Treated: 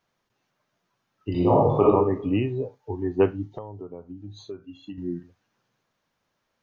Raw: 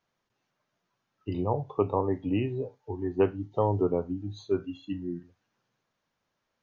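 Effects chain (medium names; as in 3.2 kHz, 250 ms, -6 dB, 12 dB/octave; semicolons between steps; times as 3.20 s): 1.31–1.82 s: reverb throw, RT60 0.82 s, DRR -6.5 dB; 3.53–4.98 s: compression 10:1, threshold -39 dBFS, peak gain reduction 18.5 dB; trim +4 dB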